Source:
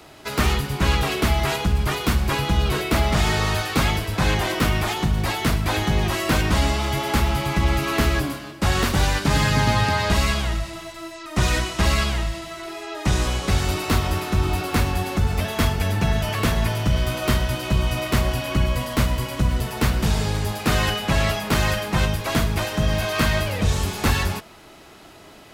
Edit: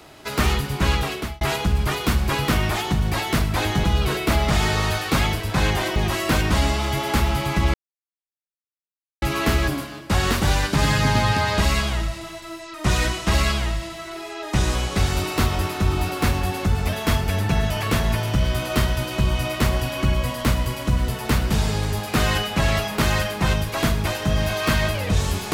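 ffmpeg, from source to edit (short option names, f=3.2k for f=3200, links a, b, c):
-filter_complex "[0:a]asplit=6[a][b][c][d][e][f];[a]atrim=end=1.41,asetpts=PTS-STARTPTS,afade=t=out:st=0.76:d=0.65:c=qsin[g];[b]atrim=start=1.41:end=2.482,asetpts=PTS-STARTPTS,afade=t=in:d=0.004:c=hsin[h];[c]atrim=start=4.598:end=5.962[i];[d]atrim=start=2.478:end=4.602[j];[e]atrim=start=5.958:end=7.74,asetpts=PTS-STARTPTS,afade=t=out:st=1.778:d=0.004:c=hsin,apad=pad_dur=1.48[k];[f]atrim=start=7.74,asetpts=PTS-STARTPTS,afade=t=in:d=0.004:c=hsin[l];[g][h]concat=n=2:v=0:a=1[m];[m][i]acrossfade=d=0.004:c1=hsin:c2=hsin[n];[n][j]acrossfade=d=0.004:c1=hsin:c2=hsin[o];[k][l]concat=n=2:v=0:a=1[p];[o][p]acrossfade=d=0.004:c1=hsin:c2=hsin"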